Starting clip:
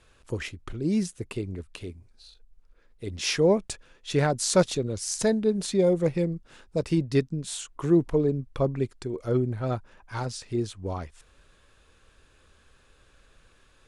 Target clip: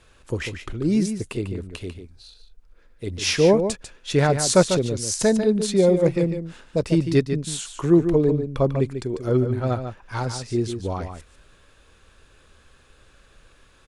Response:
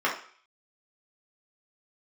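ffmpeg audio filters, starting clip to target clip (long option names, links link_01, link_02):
-filter_complex "[0:a]asplit=2[link_01][link_02];[link_02]adelay=145.8,volume=-8dB,highshelf=frequency=4000:gain=-3.28[link_03];[link_01][link_03]amix=inputs=2:normalize=0,volume=4.5dB"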